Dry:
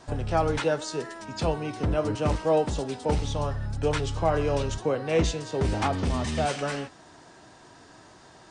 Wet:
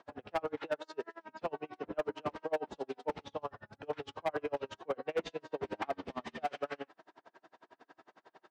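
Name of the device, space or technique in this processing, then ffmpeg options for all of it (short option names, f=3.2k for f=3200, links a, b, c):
helicopter radio: -af "highpass=340,lowpass=2.6k,aeval=exprs='val(0)*pow(10,-36*(0.5-0.5*cos(2*PI*11*n/s))/20)':c=same,asoftclip=type=hard:threshold=-25dB,volume=-1.5dB"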